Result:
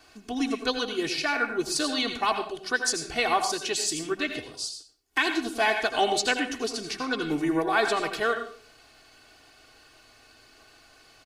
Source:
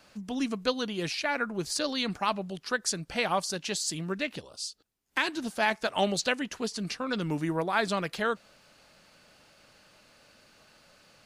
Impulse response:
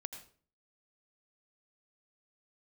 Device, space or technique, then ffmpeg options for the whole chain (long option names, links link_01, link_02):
microphone above a desk: -filter_complex "[0:a]aecho=1:1:2.7:0.89[link_01];[1:a]atrim=start_sample=2205[link_02];[link_01][link_02]afir=irnorm=-1:irlink=0,volume=4dB"